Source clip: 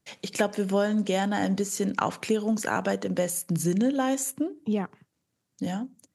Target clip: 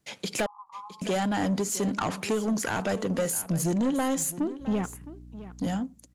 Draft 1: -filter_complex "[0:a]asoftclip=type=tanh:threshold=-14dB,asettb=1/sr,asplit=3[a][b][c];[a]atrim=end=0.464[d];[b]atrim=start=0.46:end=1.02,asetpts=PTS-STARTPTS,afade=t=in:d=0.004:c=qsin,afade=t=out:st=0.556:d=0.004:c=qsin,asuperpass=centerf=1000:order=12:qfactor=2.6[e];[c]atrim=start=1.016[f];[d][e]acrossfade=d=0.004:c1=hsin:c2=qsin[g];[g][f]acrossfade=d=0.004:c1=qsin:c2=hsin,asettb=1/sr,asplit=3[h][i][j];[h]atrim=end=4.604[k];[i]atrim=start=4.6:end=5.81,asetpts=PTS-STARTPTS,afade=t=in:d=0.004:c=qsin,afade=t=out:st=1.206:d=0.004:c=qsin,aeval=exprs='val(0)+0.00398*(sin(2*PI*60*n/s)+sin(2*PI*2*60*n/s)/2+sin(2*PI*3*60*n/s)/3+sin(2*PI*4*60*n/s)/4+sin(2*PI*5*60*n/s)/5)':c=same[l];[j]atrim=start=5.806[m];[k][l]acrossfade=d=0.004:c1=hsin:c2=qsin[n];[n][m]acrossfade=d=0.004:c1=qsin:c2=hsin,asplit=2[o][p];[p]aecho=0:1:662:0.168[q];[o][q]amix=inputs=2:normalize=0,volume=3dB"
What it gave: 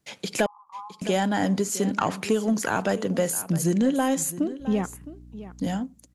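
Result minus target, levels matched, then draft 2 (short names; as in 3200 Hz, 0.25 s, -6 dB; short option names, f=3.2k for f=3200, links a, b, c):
soft clip: distortion -12 dB
-filter_complex "[0:a]asoftclip=type=tanh:threshold=-24.5dB,asettb=1/sr,asplit=3[a][b][c];[a]atrim=end=0.464[d];[b]atrim=start=0.46:end=1.02,asetpts=PTS-STARTPTS,afade=t=in:d=0.004:c=qsin,afade=t=out:st=0.556:d=0.004:c=qsin,asuperpass=centerf=1000:order=12:qfactor=2.6[e];[c]atrim=start=1.016[f];[d][e]acrossfade=d=0.004:c1=hsin:c2=qsin[g];[g][f]acrossfade=d=0.004:c1=qsin:c2=hsin,asettb=1/sr,asplit=3[h][i][j];[h]atrim=end=4.604[k];[i]atrim=start=4.6:end=5.81,asetpts=PTS-STARTPTS,afade=t=in:d=0.004:c=qsin,afade=t=out:st=1.206:d=0.004:c=qsin,aeval=exprs='val(0)+0.00398*(sin(2*PI*60*n/s)+sin(2*PI*2*60*n/s)/2+sin(2*PI*3*60*n/s)/3+sin(2*PI*4*60*n/s)/4+sin(2*PI*5*60*n/s)/5)':c=same[l];[j]atrim=start=5.806[m];[k][l]acrossfade=d=0.004:c1=hsin:c2=qsin[n];[n][m]acrossfade=d=0.004:c1=qsin:c2=hsin,asplit=2[o][p];[p]aecho=0:1:662:0.168[q];[o][q]amix=inputs=2:normalize=0,volume=3dB"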